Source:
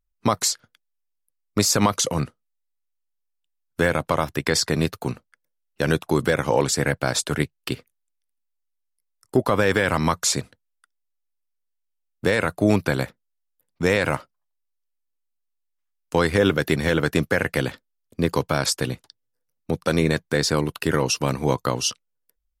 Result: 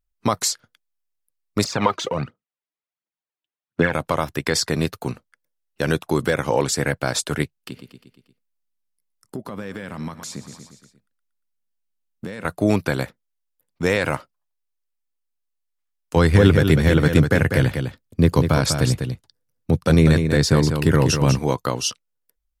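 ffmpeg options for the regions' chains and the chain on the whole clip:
ffmpeg -i in.wav -filter_complex "[0:a]asettb=1/sr,asplit=3[link_01][link_02][link_03];[link_01]atrim=end=1.644[link_04];[link_02]atrim=start=1.64:end=3.93,asetpts=PTS-STARTPTS,afade=type=in:duration=0.004:curve=qsin,afade=type=out:start_time=2.286:duration=0.004:curve=qsin,highpass=130,lowpass=3000,aphaser=in_gain=1:out_gain=1:delay=3.2:decay=0.61:speed=1.4:type=triangular[link_05];[link_03]atrim=start=3.926[link_06];[link_04][link_05]acrossfade=duration=0.004:curve1=hsin:curve2=qsin[link_07];[link_07][link_06]acrossfade=duration=0.004:curve1=qsin:curve2=hsin,asettb=1/sr,asplit=3[link_08][link_09][link_10];[link_08]atrim=end=7.574[link_11];[link_09]atrim=start=7.57:end=12.45,asetpts=PTS-STARTPTS,afade=type=in:duration=0.004:curve=qsin,afade=type=out:start_time=4.876:duration=0.004:curve=qsin,aecho=1:1:117|234|351|468|585:0.126|0.0718|0.0409|0.0233|0.0133,atrim=end_sample=215208,acompressor=threshold=-36dB:ratio=3:attack=3.2:release=140:knee=1:detection=peak,equalizer=frequency=200:width_type=o:width=0.9:gain=10[link_12];[link_10]atrim=start=12.446[link_13];[link_11][link_12]acrossfade=duration=0.004:curve1=hsin:curve2=qsin[link_14];[link_14][link_13]acrossfade=duration=0.004:curve1=qsin:curve2=hsin,asettb=1/sr,asplit=3[link_15][link_16][link_17];[link_15]atrim=end=16.164[link_18];[link_16]atrim=start=16.16:end=21.39,asetpts=PTS-STARTPTS,afade=type=in:duration=0.004:curve=qsin,afade=type=out:start_time=5.226:duration=0.004:curve=qsin,equalizer=frequency=89:width=0.55:gain=12.5,aecho=1:1:197:0.447,atrim=end_sample=230643[link_19];[link_17]atrim=start=21.386[link_20];[link_18][link_19]acrossfade=duration=0.004:curve1=hsin:curve2=qsin[link_21];[link_21][link_20]acrossfade=duration=0.004:curve1=qsin:curve2=hsin" out.wav

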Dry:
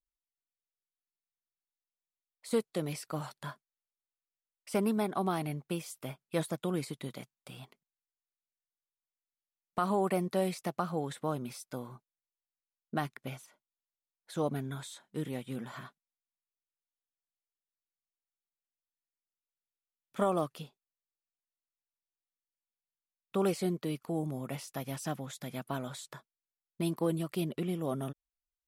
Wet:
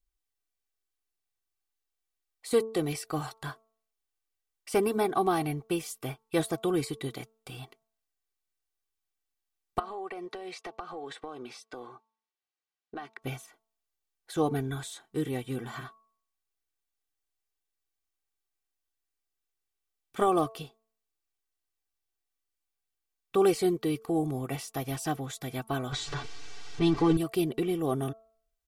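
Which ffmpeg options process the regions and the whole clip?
ffmpeg -i in.wav -filter_complex "[0:a]asettb=1/sr,asplit=3[link_01][link_02][link_03];[link_01]atrim=end=9.794[link_04];[link_02]atrim=start=9.79:end=13.22,asetpts=PTS-STARTPTS,afade=type=in:duration=0.004:curve=qsin,afade=type=out:start_time=3.426:duration=0.004:curve=qsin,highpass=380,lowpass=4600,acompressor=threshold=-41dB:ratio=6:attack=3.2:release=140:knee=1:detection=peak[link_05];[link_03]atrim=start=13.216[link_06];[link_04][link_05]acrossfade=duration=0.004:curve1=hsin:curve2=qsin[link_07];[link_07][link_06]acrossfade=duration=0.004:curve1=qsin:curve2=hsin,asettb=1/sr,asplit=3[link_08][link_09][link_10];[link_08]atrim=end=25.924[link_11];[link_09]atrim=start=25.92:end=27.17,asetpts=PTS-STARTPTS,afade=type=in:duration=0.004:curve=qsin,afade=type=out:start_time=1.246:duration=0.004:curve=qsin,aeval=exprs='val(0)+0.5*0.01*sgn(val(0))':channel_layout=same,lowpass=frequency=6100:width=0.5412,lowpass=frequency=6100:width=1.3066,aecho=1:1:6.9:0.87,atrim=end_sample=55125[link_12];[link_10]atrim=start=27.166[link_13];[link_11][link_12]acrossfade=duration=0.004:curve1=hsin:curve2=qsin[link_14];[link_14][link_13]acrossfade=duration=0.004:curve1=qsin:curve2=hsin,lowshelf=frequency=100:gain=9.5,aecho=1:1:2.6:0.65,bandreject=frequency=222.5:width_type=h:width=4,bandreject=frequency=445:width_type=h:width=4,bandreject=frequency=667.5:width_type=h:width=4,bandreject=frequency=890:width_type=h:width=4,bandreject=frequency=1112.5:width_type=h:width=4,bandreject=frequency=1335:width_type=h:width=4,volume=3.5dB" out.wav

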